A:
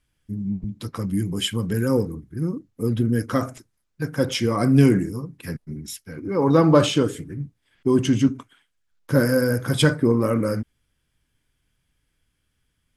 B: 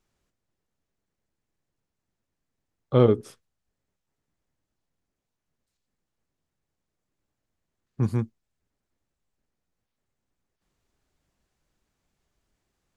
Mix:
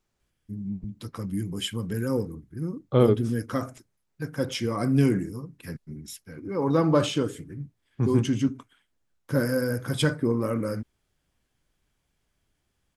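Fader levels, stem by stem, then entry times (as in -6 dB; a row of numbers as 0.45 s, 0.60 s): -6.0 dB, -1.0 dB; 0.20 s, 0.00 s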